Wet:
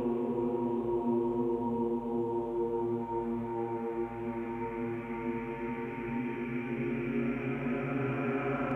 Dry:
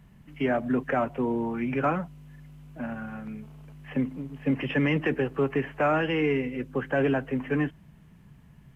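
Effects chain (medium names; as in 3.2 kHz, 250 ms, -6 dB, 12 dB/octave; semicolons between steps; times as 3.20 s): Paulstretch 17×, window 0.50 s, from 1.24 s; reverse echo 37 ms -4 dB; trim -6 dB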